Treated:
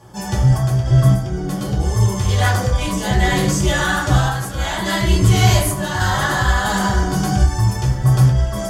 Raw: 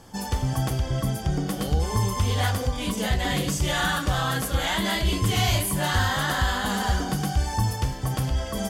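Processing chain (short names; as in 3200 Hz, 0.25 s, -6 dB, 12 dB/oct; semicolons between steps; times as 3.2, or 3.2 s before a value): dynamic EQ 6400 Hz, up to +7 dB, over -47 dBFS, Q 1; random-step tremolo; reverb RT60 0.60 s, pre-delay 4 ms, DRR -7 dB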